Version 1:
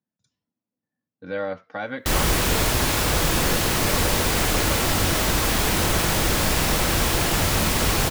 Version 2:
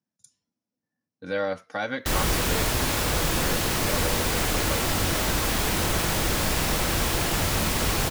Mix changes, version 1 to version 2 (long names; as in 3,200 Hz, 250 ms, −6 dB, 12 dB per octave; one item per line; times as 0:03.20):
speech: remove high-frequency loss of the air 230 metres
background −3.5 dB